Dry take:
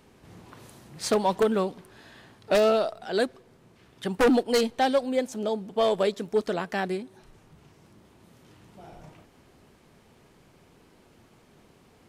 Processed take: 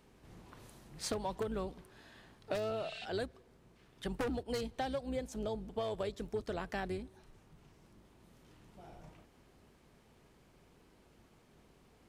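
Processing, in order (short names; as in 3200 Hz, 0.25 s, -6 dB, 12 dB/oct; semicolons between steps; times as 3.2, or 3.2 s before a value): octaver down 2 oct, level -4 dB; spectral repair 2.78–3.03, 1500–9500 Hz before; compressor 10:1, threshold -26 dBFS, peak gain reduction 10.5 dB; gain -7.5 dB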